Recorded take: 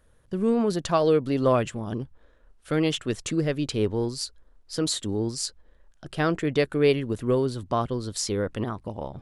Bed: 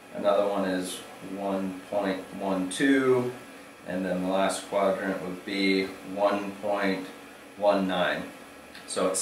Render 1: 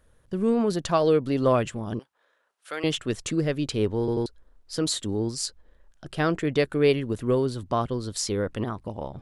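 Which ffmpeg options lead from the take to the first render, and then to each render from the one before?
ffmpeg -i in.wav -filter_complex "[0:a]asettb=1/sr,asplit=3[link_01][link_02][link_03];[link_01]atrim=end=1.994[link_04];[link_02]atrim=start=1.99:end=2.84,asetpts=PTS-STARTPTS,afade=type=in:duration=0.004:curve=qsin,afade=type=out:start_time=0.846:duration=0.004:curve=qsin,highpass=770[link_05];[link_03]atrim=start=2.836[link_06];[link_04][link_05]acrossfade=duration=0.004:curve1=hsin:curve2=qsin[link_07];[link_07][link_06]acrossfade=duration=0.004:curve1=qsin:curve2=hsin,asplit=4[link_08][link_09][link_10][link_11];[link_08]atrim=end=4.082[link_12];[link_09]atrim=start=3.988:end=4.082[link_13];[link_10]atrim=start=3.988:end=4.082[link_14];[link_11]atrim=start=4.258[link_15];[link_12][link_13]acrossfade=duration=0.004:curve1=hsin:curve2=hsin[link_16];[link_16][link_14]acrossfade=duration=0.004:curve1=hsin:curve2=hsin[link_17];[link_17][link_15]acrossfade=duration=0.004:curve1=hsin:curve2=hsin" out.wav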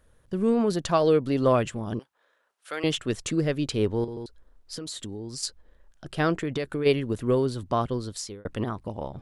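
ffmpeg -i in.wav -filter_complex "[0:a]asettb=1/sr,asplit=3[link_01][link_02][link_03];[link_01]atrim=end=4.044[link_04];[link_02]atrim=start=4.04:end=5.43,asetpts=PTS-STARTPTS,afade=type=in:duration=0.004:curve=qsin,afade=type=out:start_time=1.386:duration=0.004:curve=qsin,acompressor=threshold=-32dB:ratio=10:attack=3.2:release=140:knee=1:detection=peak[link_05];[link_03]atrim=start=5.426[link_06];[link_04][link_05]acrossfade=duration=0.004:curve1=hsin:curve2=qsin[link_07];[link_07][link_06]acrossfade=duration=0.004:curve1=qsin:curve2=hsin,asplit=3[link_08][link_09][link_10];[link_08]afade=type=out:start_time=6.33:duration=0.02[link_11];[link_09]acompressor=threshold=-24dB:ratio=10:attack=3.2:release=140:knee=1:detection=peak,afade=type=in:start_time=6.33:duration=0.02,afade=type=out:start_time=6.85:duration=0.02[link_12];[link_10]afade=type=in:start_time=6.85:duration=0.02[link_13];[link_11][link_12][link_13]amix=inputs=3:normalize=0,asplit=2[link_14][link_15];[link_14]atrim=end=8.45,asetpts=PTS-STARTPTS,afade=type=out:start_time=7.97:duration=0.48[link_16];[link_15]atrim=start=8.45,asetpts=PTS-STARTPTS,afade=type=in:duration=0.004:curve=hsin[link_17];[link_16][link_17]concat=n=2:v=0:a=1" out.wav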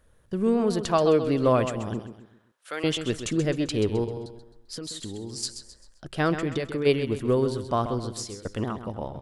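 ffmpeg -i in.wav -af "aecho=1:1:131|262|393|524:0.316|0.12|0.0457|0.0174" out.wav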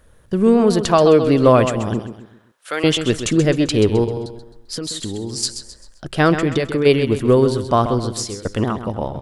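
ffmpeg -i in.wav -af "volume=9.5dB,alimiter=limit=-2dB:level=0:latency=1" out.wav

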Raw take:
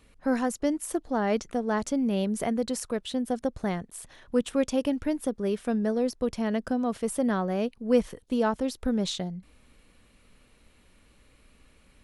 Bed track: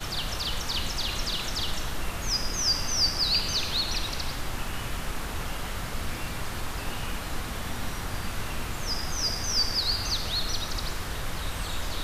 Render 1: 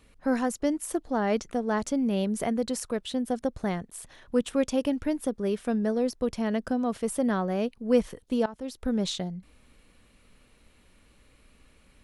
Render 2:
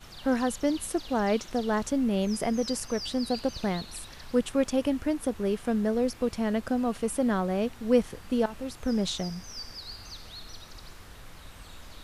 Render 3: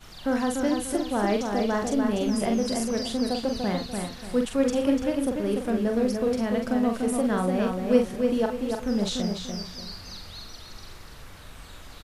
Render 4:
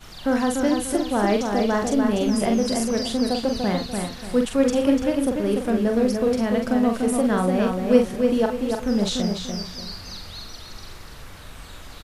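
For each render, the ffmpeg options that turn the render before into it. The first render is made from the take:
ffmpeg -i in.wav -filter_complex "[0:a]asplit=2[link_01][link_02];[link_01]atrim=end=8.46,asetpts=PTS-STARTPTS,afade=type=out:start_time=8.456:duration=0.004:curve=hsin:silence=0.112202[link_03];[link_02]atrim=start=8.46,asetpts=PTS-STARTPTS,afade=type=in:duration=0.5:silence=0.112202[link_04];[link_03][link_04]concat=n=2:v=0:a=1" out.wav
ffmpeg -i in.wav -i bed.wav -filter_complex "[1:a]volume=-15dB[link_01];[0:a][link_01]amix=inputs=2:normalize=0" out.wav
ffmpeg -i in.wav -filter_complex "[0:a]asplit=2[link_01][link_02];[link_02]adelay=44,volume=-5dB[link_03];[link_01][link_03]amix=inputs=2:normalize=0,asplit=2[link_04][link_05];[link_05]adelay=293,lowpass=frequency=4700:poles=1,volume=-4.5dB,asplit=2[link_06][link_07];[link_07]adelay=293,lowpass=frequency=4700:poles=1,volume=0.34,asplit=2[link_08][link_09];[link_09]adelay=293,lowpass=frequency=4700:poles=1,volume=0.34,asplit=2[link_10][link_11];[link_11]adelay=293,lowpass=frequency=4700:poles=1,volume=0.34[link_12];[link_04][link_06][link_08][link_10][link_12]amix=inputs=5:normalize=0" out.wav
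ffmpeg -i in.wav -af "volume=4dB" out.wav

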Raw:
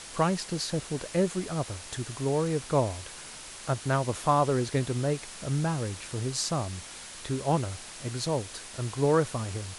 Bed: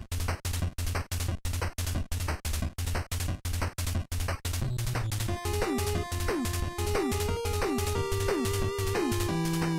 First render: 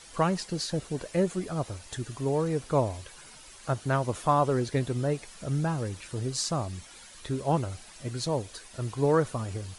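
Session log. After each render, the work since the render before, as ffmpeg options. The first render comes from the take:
ffmpeg -i in.wav -af "afftdn=noise_reduction=10:noise_floor=-44" out.wav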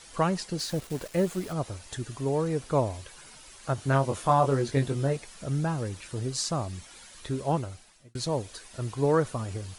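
ffmpeg -i in.wav -filter_complex "[0:a]asettb=1/sr,asplit=3[link_01][link_02][link_03];[link_01]atrim=end=0.594[link_04];[link_02]atrim=start=0.59:end=1.53,asetpts=PTS-STARTPTS,afade=type=in:duration=0.004:curve=qsin,afade=type=out:start_time=0.936:duration=0.004:curve=qsin,acrusher=bits=8:dc=4:mix=0:aa=0.000001[link_05];[link_03]atrim=start=1.526[link_06];[link_04][link_05]acrossfade=duration=0.004:curve1=hsin:curve2=qsin[link_07];[link_07][link_06]acrossfade=duration=0.004:curve1=qsin:curve2=hsin,asettb=1/sr,asplit=3[link_08][link_09][link_10];[link_08]atrim=end=3.764[link_11];[link_09]atrim=start=3.76:end=5.17,asetpts=PTS-STARTPTS,afade=type=in:duration=0.004:curve=qsin,afade=type=out:start_time=1.406:duration=0.004:curve=qsin,asplit=2[link_12][link_13];[link_13]adelay=22,volume=-5dB[link_14];[link_12][link_14]amix=inputs=2:normalize=0,atrim=end_sample=62181[link_15];[link_10]atrim=start=5.166[link_16];[link_11][link_15]acrossfade=duration=0.004:curve1=hsin:curve2=qsin[link_17];[link_17][link_16]acrossfade=duration=0.004:curve1=qsin:curve2=hsin,asplit=2[link_18][link_19];[link_18]atrim=end=8.15,asetpts=PTS-STARTPTS,afade=type=out:start_time=7.45:duration=0.7[link_20];[link_19]atrim=start=8.15,asetpts=PTS-STARTPTS,afade=type=in:duration=0.004:curve=hsin[link_21];[link_20][link_21]concat=n=2:v=0:a=1" out.wav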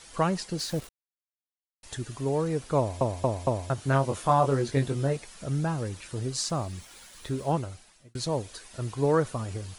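ffmpeg -i in.wav -filter_complex "[0:a]asettb=1/sr,asplit=3[link_01][link_02][link_03];[link_01]atrim=end=6.394[link_04];[link_02]atrim=start=6.39:end=7.54,asetpts=PTS-STARTPTS,afade=type=in:duration=0.004:curve=qsin,afade=type=out:start_time=1.146:duration=0.004:curve=qsin,aeval=exprs='val(0)*gte(abs(val(0)),0.00266)':channel_layout=same[link_05];[link_03]atrim=start=7.536[link_06];[link_04][link_05]acrossfade=duration=0.004:curve1=hsin:curve2=qsin[link_07];[link_07][link_06]acrossfade=duration=0.004:curve1=qsin:curve2=hsin,asplit=7[link_08][link_09][link_10][link_11][link_12][link_13][link_14];[link_08]atrim=end=0.89,asetpts=PTS-STARTPTS,afade=type=out:start_time=0.886:duration=0.004:curve=hsin[link_15];[link_09]atrim=start=0.89:end=1.83,asetpts=PTS-STARTPTS,volume=0[link_16];[link_10]atrim=start=1.83:end=3.012,asetpts=PTS-STARTPTS,afade=type=in:duration=0.004:curve=hsin[link_17];[link_11]atrim=start=2.778:end=3.012[link_18];[link_12]atrim=start=2.778:end=3.012[link_19];[link_13]atrim=start=2.778:end=3.012[link_20];[link_14]atrim=start=3.698[link_21];[link_15][link_16][link_17]concat=n=3:v=0:a=1[link_22];[link_22][link_18]acrossfade=duration=0.004:curve1=hsin:curve2=hsin[link_23];[link_23][link_19]acrossfade=duration=0.004:curve1=hsin:curve2=hsin[link_24];[link_24][link_20]acrossfade=duration=0.004:curve1=hsin:curve2=hsin[link_25];[link_25][link_21]acrossfade=duration=0.004:curve1=hsin:curve2=hsin" out.wav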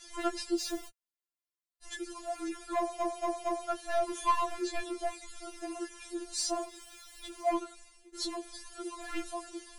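ffmpeg -i in.wav -af "volume=21.5dB,asoftclip=hard,volume=-21.5dB,afftfilt=real='re*4*eq(mod(b,16),0)':imag='im*4*eq(mod(b,16),0)':win_size=2048:overlap=0.75" out.wav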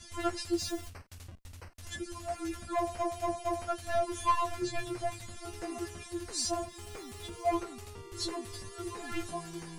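ffmpeg -i in.wav -i bed.wav -filter_complex "[1:a]volume=-17.5dB[link_01];[0:a][link_01]amix=inputs=2:normalize=0" out.wav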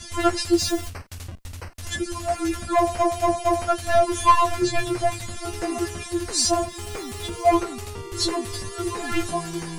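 ffmpeg -i in.wav -af "volume=12dB" out.wav

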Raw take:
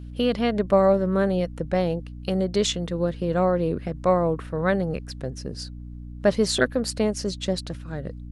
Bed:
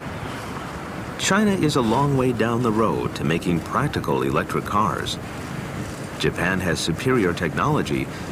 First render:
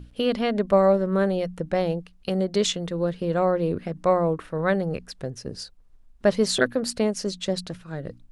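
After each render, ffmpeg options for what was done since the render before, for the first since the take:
ffmpeg -i in.wav -af "bandreject=frequency=60:width_type=h:width=6,bandreject=frequency=120:width_type=h:width=6,bandreject=frequency=180:width_type=h:width=6,bandreject=frequency=240:width_type=h:width=6,bandreject=frequency=300:width_type=h:width=6" out.wav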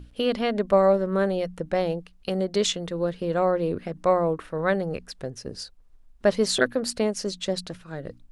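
ffmpeg -i in.wav -af "equalizer=frequency=140:width_type=o:width=1.5:gain=-4" out.wav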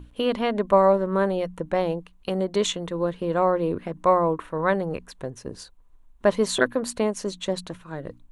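ffmpeg -i in.wav -af "equalizer=frequency=315:width_type=o:width=0.33:gain=3,equalizer=frequency=1000:width_type=o:width=0.33:gain=10,equalizer=frequency=5000:width_type=o:width=0.33:gain=-10" out.wav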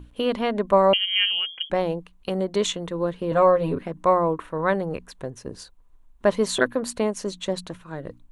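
ffmpeg -i in.wav -filter_complex "[0:a]asettb=1/sr,asplit=3[link_01][link_02][link_03];[link_01]atrim=end=0.934[link_04];[link_02]atrim=start=0.93:end=1.7,asetpts=PTS-STARTPTS,afade=type=in:duration=0.004:curve=qsin,afade=type=out:start_time=0.766:duration=0.004:curve=qsin,lowpass=frequency=2900:width_type=q:width=0.5098,lowpass=frequency=2900:width_type=q:width=0.6013,lowpass=frequency=2900:width_type=q:width=0.9,lowpass=frequency=2900:width_type=q:width=2.563,afreqshift=-3400[link_05];[link_03]atrim=start=1.696[link_06];[link_04][link_05]acrossfade=duration=0.004:curve1=hsin:curve2=qsin[link_07];[link_07][link_06]acrossfade=duration=0.004:curve1=qsin:curve2=hsin,asettb=1/sr,asplit=3[link_08][link_09][link_10];[link_08]atrim=end=3.314[link_11];[link_09]atrim=start=3.31:end=3.83,asetpts=PTS-STARTPTS,afade=type=in:duration=0.004:curve=qsin,afade=type=out:start_time=0.516:duration=0.004:curve=qsin,aecho=1:1:7.3:0.97,atrim=end_sample=22932[link_12];[link_10]atrim=start=3.826[link_13];[link_11][link_12]acrossfade=duration=0.004:curve1=hsin:curve2=qsin[link_14];[link_14][link_13]acrossfade=duration=0.004:curve1=qsin:curve2=hsin" out.wav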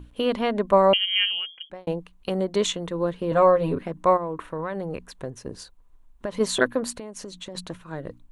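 ffmpeg -i in.wav -filter_complex "[0:a]asplit=3[link_01][link_02][link_03];[link_01]afade=type=out:start_time=4.16:duration=0.02[link_04];[link_02]acompressor=threshold=-25dB:ratio=10:attack=3.2:release=140:knee=1:detection=peak,afade=type=in:start_time=4.16:duration=0.02,afade=type=out:start_time=6.39:duration=0.02[link_05];[link_03]afade=type=in:start_time=6.39:duration=0.02[link_06];[link_04][link_05][link_06]amix=inputs=3:normalize=0,asettb=1/sr,asplit=3[link_07][link_08][link_09];[link_07]atrim=end=6.954[link_10];[link_08]atrim=start=6.95:end=7.55,asetpts=PTS-STARTPTS,afade=type=in:duration=0.004:curve=qsin,afade=type=out:start_time=0.596:duration=0.004:curve=qsin,acompressor=threshold=-33dB:ratio=12:attack=3.2:release=140:knee=1:detection=peak[link_11];[link_09]atrim=start=7.546[link_12];[link_10][link_11]acrossfade=duration=0.004:curve1=hsin:curve2=qsin[link_13];[link_13][link_12]acrossfade=duration=0.004:curve1=qsin:curve2=hsin,asplit=2[link_14][link_15];[link_14]atrim=end=1.87,asetpts=PTS-STARTPTS,afade=type=out:start_time=1.13:duration=0.74[link_16];[link_15]atrim=start=1.87,asetpts=PTS-STARTPTS,afade=type=in:duration=0.004:curve=hsin[link_17];[link_16][link_17]concat=n=2:v=0:a=1" out.wav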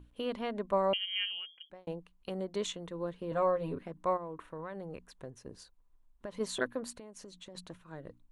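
ffmpeg -i in.wav -af "volume=-12dB" out.wav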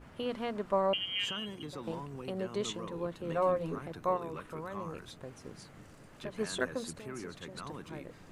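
ffmpeg -i in.wav -i bed.wav -filter_complex "[1:a]volume=-24dB[link_01];[0:a][link_01]amix=inputs=2:normalize=0" out.wav

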